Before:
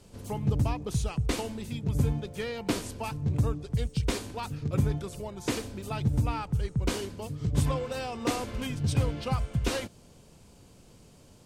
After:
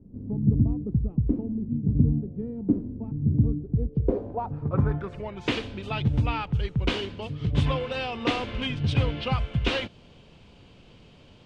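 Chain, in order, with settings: low-pass sweep 260 Hz -> 3100 Hz, 3.62–5.52; gain +2.5 dB

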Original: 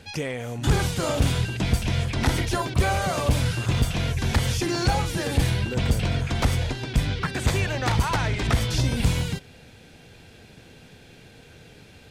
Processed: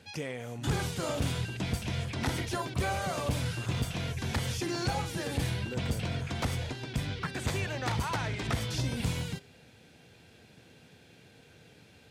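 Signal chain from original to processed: HPF 85 Hz; de-hum 404.2 Hz, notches 39; gain -7.5 dB

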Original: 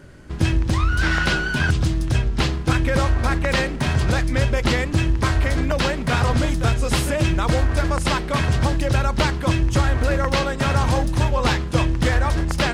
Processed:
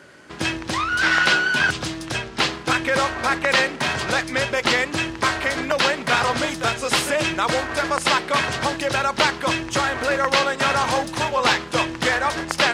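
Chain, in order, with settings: weighting filter A; gain +4 dB

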